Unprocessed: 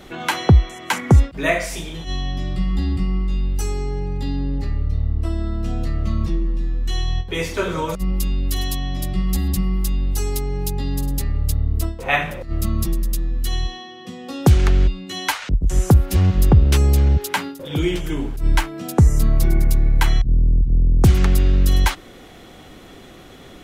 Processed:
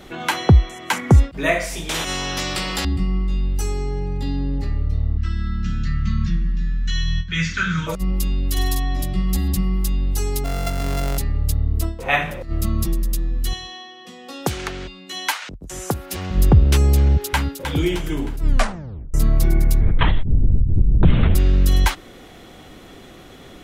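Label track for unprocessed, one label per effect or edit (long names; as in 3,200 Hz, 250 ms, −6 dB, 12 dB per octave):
1.890000	2.850000	every bin compressed towards the loudest bin 4 to 1
5.170000	7.870000	drawn EQ curve 120 Hz 0 dB, 170 Hz +9 dB, 380 Hz −19 dB, 760 Hz −28 dB, 1,500 Hz +10 dB, 2,200 Hz +3 dB, 6,900 Hz +2 dB, 10,000 Hz −28 dB
8.520000	9.020000	double-tracking delay 46 ms −4 dB
10.440000	11.180000	samples sorted by size in blocks of 64 samples
13.530000	16.310000	high-pass filter 590 Hz 6 dB per octave
17.020000	17.620000	delay throw 310 ms, feedback 45%, level −8 dB
18.420000	18.420000	tape stop 0.72 s
19.810000	21.350000	linear-prediction vocoder at 8 kHz whisper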